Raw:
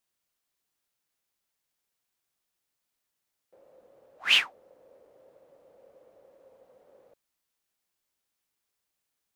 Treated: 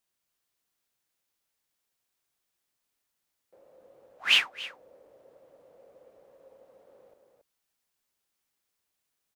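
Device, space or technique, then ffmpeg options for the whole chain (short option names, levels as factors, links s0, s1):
ducked delay: -filter_complex "[0:a]asplit=3[s0][s1][s2];[s1]adelay=277,volume=0.531[s3];[s2]apad=whole_len=424786[s4];[s3][s4]sidechaincompress=threshold=0.00282:ratio=3:attack=11:release=227[s5];[s0][s5]amix=inputs=2:normalize=0"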